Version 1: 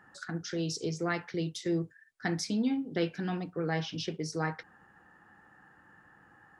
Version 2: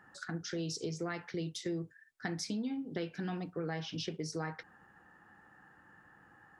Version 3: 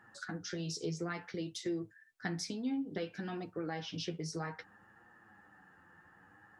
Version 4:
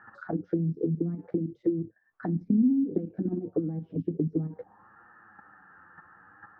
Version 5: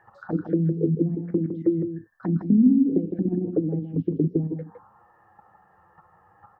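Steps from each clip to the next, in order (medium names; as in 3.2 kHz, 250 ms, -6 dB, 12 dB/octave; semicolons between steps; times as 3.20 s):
compression, threshold -32 dBFS, peak gain reduction 7.5 dB; trim -1.5 dB
flange 0.59 Hz, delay 8.3 ms, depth 3.7 ms, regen +29%; trim +3 dB
level held to a coarse grid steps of 10 dB; touch-sensitive low-pass 230–1500 Hz down, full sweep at -37.5 dBFS; trim +9 dB
touch-sensitive phaser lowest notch 220 Hz, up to 1.4 kHz, full sweep at -30 dBFS; delay 160 ms -7.5 dB; trim +5.5 dB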